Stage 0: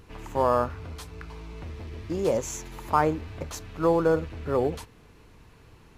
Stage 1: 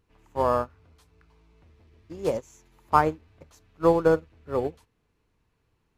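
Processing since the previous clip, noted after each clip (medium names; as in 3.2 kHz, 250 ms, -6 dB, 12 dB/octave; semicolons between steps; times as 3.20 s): upward expansion 2.5:1, over -34 dBFS; trim +4 dB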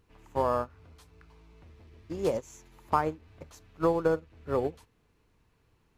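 compression 2.5:1, threshold -30 dBFS, peak gain reduction 11.5 dB; trim +3.5 dB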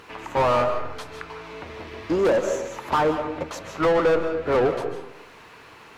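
overdrive pedal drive 32 dB, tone 1.4 kHz, clips at -11.5 dBFS; algorithmic reverb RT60 0.79 s, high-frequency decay 0.5×, pre-delay 110 ms, DRR 7 dB; tape noise reduction on one side only encoder only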